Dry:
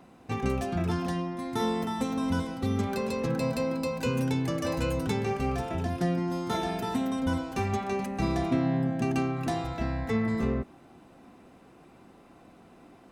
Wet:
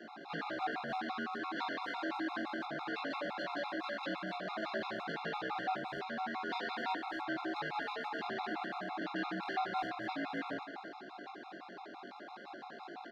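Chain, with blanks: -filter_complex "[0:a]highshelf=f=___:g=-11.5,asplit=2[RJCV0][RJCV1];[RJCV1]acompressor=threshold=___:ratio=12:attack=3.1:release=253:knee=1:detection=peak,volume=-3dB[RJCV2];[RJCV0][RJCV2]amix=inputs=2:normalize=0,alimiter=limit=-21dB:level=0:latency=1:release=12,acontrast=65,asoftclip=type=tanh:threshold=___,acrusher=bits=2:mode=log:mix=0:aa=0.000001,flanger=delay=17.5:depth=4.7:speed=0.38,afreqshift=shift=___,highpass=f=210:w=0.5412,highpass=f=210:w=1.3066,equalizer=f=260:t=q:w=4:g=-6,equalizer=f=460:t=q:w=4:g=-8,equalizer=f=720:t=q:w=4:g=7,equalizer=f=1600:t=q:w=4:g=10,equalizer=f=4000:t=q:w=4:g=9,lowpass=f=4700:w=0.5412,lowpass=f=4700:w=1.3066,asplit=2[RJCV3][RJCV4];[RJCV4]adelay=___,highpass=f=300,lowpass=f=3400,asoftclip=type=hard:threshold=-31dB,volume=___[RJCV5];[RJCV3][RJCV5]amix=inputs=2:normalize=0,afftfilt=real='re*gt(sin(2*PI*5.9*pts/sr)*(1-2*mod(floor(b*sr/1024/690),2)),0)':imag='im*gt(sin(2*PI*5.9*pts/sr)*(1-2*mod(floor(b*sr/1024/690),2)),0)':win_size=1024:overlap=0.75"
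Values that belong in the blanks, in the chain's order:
3700, -41dB, -32.5dB, 56, 260, -8dB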